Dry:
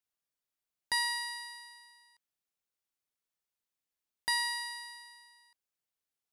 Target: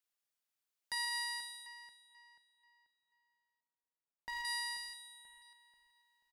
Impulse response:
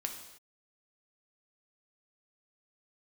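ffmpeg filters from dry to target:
-filter_complex "[0:a]lowshelf=frequency=440:gain=-11,acrossover=split=270[link_01][link_02];[link_02]alimiter=level_in=6dB:limit=-24dB:level=0:latency=1:release=117,volume=-6dB[link_03];[link_01][link_03]amix=inputs=2:normalize=0,asettb=1/sr,asplit=3[link_04][link_05][link_06];[link_04]atrim=end=1.664[link_07];[link_05]atrim=start=1.66:end=4.45,asetpts=PTS-STARTPTS,afade=type=in:duration=0.004:curve=qsin,afade=type=out:start_time=2.786:duration=0.004:curve=qsin,adynamicsmooth=sensitivity=6.5:basefreq=1200[link_08];[link_06]atrim=start=4.446[link_09];[link_07][link_08]acrossfade=duration=0.004:curve1=hsin:curve2=qsin[link_10];[link_10][link_09]acrossfade=duration=0.004:curve1=qsin:curve2=hsin,asplit=2[link_11][link_12];[link_12]adelay=486,lowpass=frequency=3900:poles=1,volume=-12dB,asplit=2[link_13][link_14];[link_14]adelay=486,lowpass=frequency=3900:poles=1,volume=0.41,asplit=2[link_15][link_16];[link_16]adelay=486,lowpass=frequency=3900:poles=1,volume=0.41,asplit=2[link_17][link_18];[link_18]adelay=486,lowpass=frequency=3900:poles=1,volume=0.41[link_19];[link_11][link_13][link_15][link_17][link_19]amix=inputs=5:normalize=0,volume=1dB"

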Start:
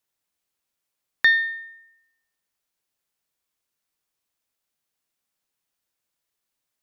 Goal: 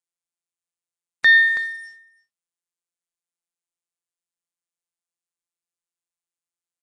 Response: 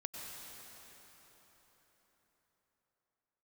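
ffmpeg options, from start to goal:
-filter_complex "[0:a]asplit=2[link_01][link_02];[link_02]acompressor=threshold=-29dB:ratio=16,volume=2.5dB[link_03];[link_01][link_03]amix=inputs=2:normalize=0,acrusher=bits=7:mix=0:aa=0.5,aecho=1:1:326:0.0891,alimiter=level_in=13dB:limit=-1dB:release=50:level=0:latency=1,volume=-6.5dB" -ar 22050 -c:a nellymoser

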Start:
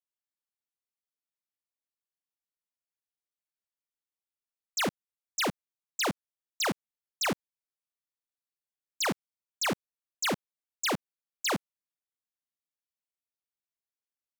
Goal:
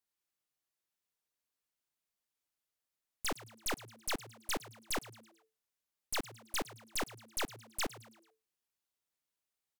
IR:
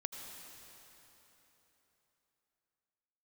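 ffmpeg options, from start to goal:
-filter_complex "[0:a]aeval=exprs='(tanh(178*val(0)+0.75)-tanh(0.75))/178':channel_layout=same,asetrate=64827,aresample=44100,asplit=5[link_01][link_02][link_03][link_04][link_05];[link_02]adelay=109,afreqshift=110,volume=-17dB[link_06];[link_03]adelay=218,afreqshift=220,volume=-23.9dB[link_07];[link_04]adelay=327,afreqshift=330,volume=-30.9dB[link_08];[link_05]adelay=436,afreqshift=440,volume=-37.8dB[link_09];[link_01][link_06][link_07][link_08][link_09]amix=inputs=5:normalize=0,volume=10.5dB"

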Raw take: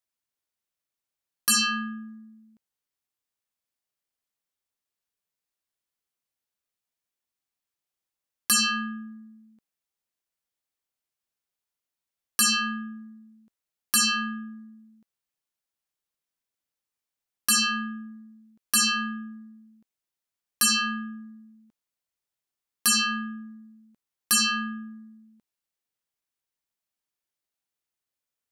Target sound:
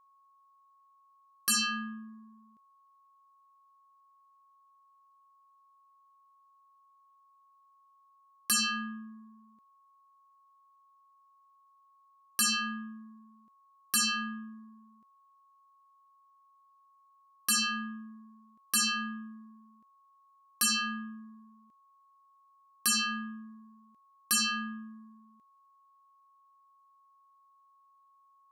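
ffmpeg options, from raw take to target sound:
ffmpeg -i in.wav -af "aeval=exprs='val(0)+0.00158*sin(2*PI*1100*n/s)':channel_layout=same,volume=-6dB" out.wav

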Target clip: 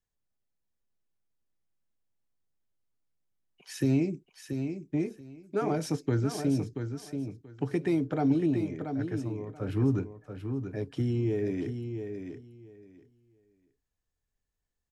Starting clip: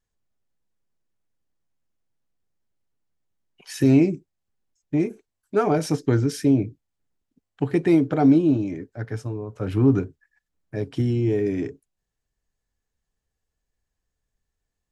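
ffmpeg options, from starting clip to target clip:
ffmpeg -i in.wav -filter_complex "[0:a]acrossover=split=170|3000[link_01][link_02][link_03];[link_02]acompressor=threshold=-20dB:ratio=2.5[link_04];[link_01][link_04][link_03]amix=inputs=3:normalize=0,aecho=1:1:682|1364|2046:0.422|0.0759|0.0137,volume=-6.5dB" out.wav

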